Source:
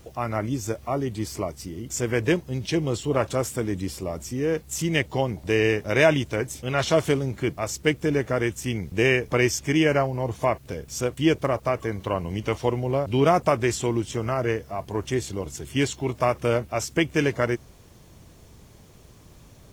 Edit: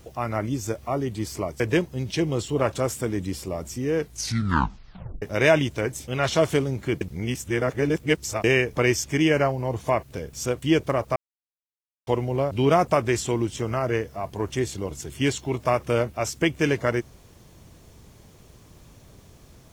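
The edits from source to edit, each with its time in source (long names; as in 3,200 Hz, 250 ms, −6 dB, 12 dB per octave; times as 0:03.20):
0:01.60–0:02.15: remove
0:04.52: tape stop 1.25 s
0:07.56–0:08.99: reverse
0:11.71–0:12.62: silence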